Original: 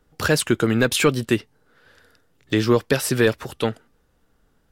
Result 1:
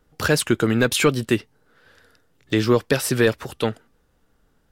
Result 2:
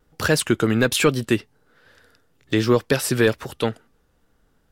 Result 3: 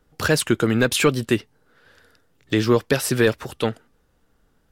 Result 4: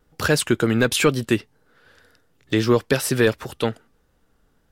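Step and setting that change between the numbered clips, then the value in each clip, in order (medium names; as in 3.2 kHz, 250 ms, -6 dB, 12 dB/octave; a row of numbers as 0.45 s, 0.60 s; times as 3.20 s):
vibrato, rate: 5.6 Hz, 1.2 Hz, 13 Hz, 2 Hz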